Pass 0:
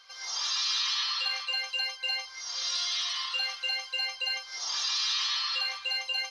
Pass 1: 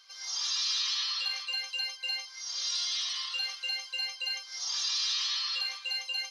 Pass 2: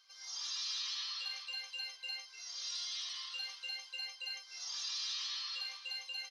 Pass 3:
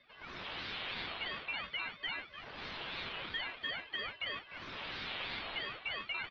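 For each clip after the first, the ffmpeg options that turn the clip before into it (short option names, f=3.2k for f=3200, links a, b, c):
-af "highshelf=f=2.7k:g=11,volume=-9dB"
-filter_complex "[0:a]asplit=5[a][b][c][d][e];[b]adelay=297,afreqshift=-75,volume=-15.5dB[f];[c]adelay=594,afreqshift=-150,volume=-21.9dB[g];[d]adelay=891,afreqshift=-225,volume=-28.3dB[h];[e]adelay=1188,afreqshift=-300,volume=-34.6dB[i];[a][f][g][h][i]amix=inputs=5:normalize=0,volume=-9dB"
-af "aeval=exprs='0.0376*(cos(1*acos(clip(val(0)/0.0376,-1,1)))-cos(1*PI/2))+0.00531*(cos(8*acos(clip(val(0)/0.0376,-1,1)))-cos(8*PI/2))':c=same,highpass=f=470:t=q:w=0.5412,highpass=f=470:t=q:w=1.307,lowpass=f=3.1k:t=q:w=0.5176,lowpass=f=3.1k:t=q:w=0.7071,lowpass=f=3.1k:t=q:w=1.932,afreqshift=-260,aeval=exprs='val(0)*sin(2*PI*450*n/s+450*0.65/3*sin(2*PI*3*n/s))':c=same,volume=9.5dB"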